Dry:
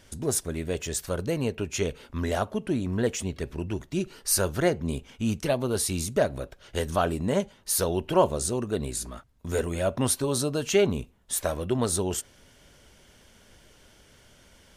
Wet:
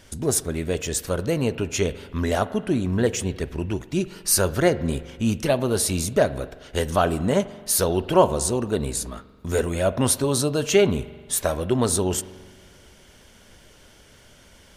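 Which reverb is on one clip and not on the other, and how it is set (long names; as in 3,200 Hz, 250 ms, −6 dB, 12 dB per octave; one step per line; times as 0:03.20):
spring reverb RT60 1.6 s, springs 43 ms, chirp 30 ms, DRR 15.5 dB
level +4.5 dB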